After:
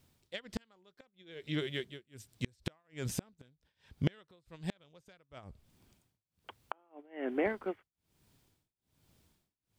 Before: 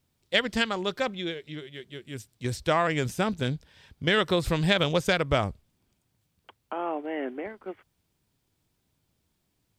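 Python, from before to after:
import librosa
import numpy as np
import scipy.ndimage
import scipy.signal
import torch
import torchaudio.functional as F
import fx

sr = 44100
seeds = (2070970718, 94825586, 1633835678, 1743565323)

y = x * (1.0 - 0.98 / 2.0 + 0.98 / 2.0 * np.cos(2.0 * np.pi * 1.2 * (np.arange(len(x)) / sr)))
y = fx.gate_flip(y, sr, shuts_db=-25.0, range_db=-40)
y = y * librosa.db_to_amplitude(5.5)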